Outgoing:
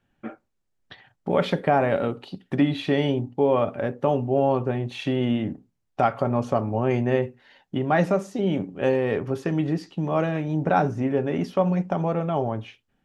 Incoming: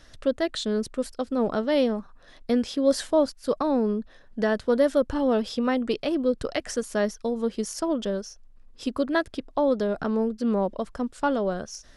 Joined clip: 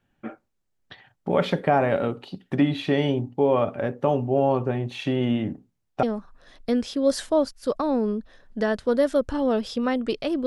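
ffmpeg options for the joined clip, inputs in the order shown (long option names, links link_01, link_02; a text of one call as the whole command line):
ffmpeg -i cue0.wav -i cue1.wav -filter_complex "[0:a]apad=whole_dur=10.46,atrim=end=10.46,atrim=end=6.032[link_01];[1:a]atrim=start=1.838:end=6.27[link_02];[link_01][link_02]acrossfade=duration=0.004:curve1=hsin:curve2=hsin" out.wav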